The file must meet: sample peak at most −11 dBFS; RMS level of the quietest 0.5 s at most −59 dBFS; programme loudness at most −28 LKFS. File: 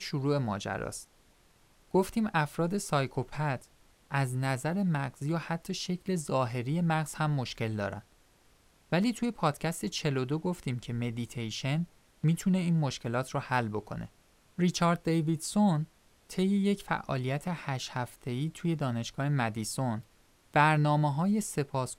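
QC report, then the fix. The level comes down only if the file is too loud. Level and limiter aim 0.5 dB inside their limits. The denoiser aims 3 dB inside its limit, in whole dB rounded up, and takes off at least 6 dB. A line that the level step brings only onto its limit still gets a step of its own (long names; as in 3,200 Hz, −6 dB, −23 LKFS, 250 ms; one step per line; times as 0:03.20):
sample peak −9.5 dBFS: out of spec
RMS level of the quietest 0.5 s −63 dBFS: in spec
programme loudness −31.0 LKFS: in spec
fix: brickwall limiter −11.5 dBFS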